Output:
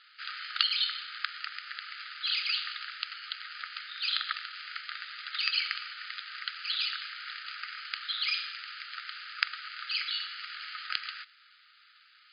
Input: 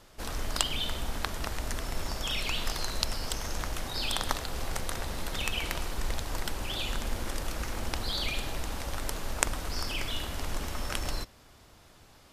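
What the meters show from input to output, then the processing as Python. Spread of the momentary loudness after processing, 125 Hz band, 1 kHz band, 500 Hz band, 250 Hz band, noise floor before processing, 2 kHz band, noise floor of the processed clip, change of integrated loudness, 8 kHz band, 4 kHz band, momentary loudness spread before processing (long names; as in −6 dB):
11 LU, below −40 dB, −4.5 dB, below −40 dB, below −40 dB, −56 dBFS, +2.5 dB, −60 dBFS, +0.5 dB, below −40 dB, +3.0 dB, 6 LU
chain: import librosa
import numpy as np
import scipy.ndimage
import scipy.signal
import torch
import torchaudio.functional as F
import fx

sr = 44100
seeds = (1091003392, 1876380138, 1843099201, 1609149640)

y = fx.rider(x, sr, range_db=10, speed_s=2.0)
y = (np.kron(scipy.signal.resample_poly(y, 1, 6), np.eye(6)[0]) * 6)[:len(y)]
y = fx.brickwall_bandpass(y, sr, low_hz=1200.0, high_hz=5000.0)
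y = y * librosa.db_to_amplitude(2.0)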